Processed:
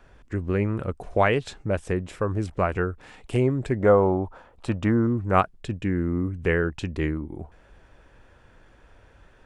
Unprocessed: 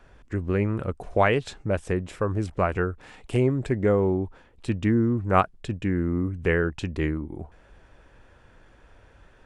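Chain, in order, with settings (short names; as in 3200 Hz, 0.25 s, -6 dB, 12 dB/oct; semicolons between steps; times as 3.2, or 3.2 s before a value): 3.81–5.07 band shelf 870 Hz +9 dB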